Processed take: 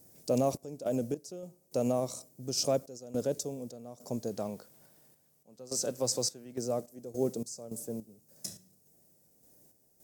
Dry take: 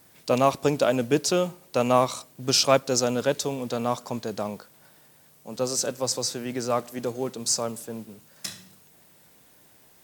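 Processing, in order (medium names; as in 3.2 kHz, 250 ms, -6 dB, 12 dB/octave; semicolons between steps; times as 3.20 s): high-order bell 1.9 kHz -15 dB 2.5 oct, from 4.30 s -8 dB, from 6.57 s -15.5 dB; peak limiter -17.5 dBFS, peak gain reduction 8 dB; random-step tremolo, depth 90%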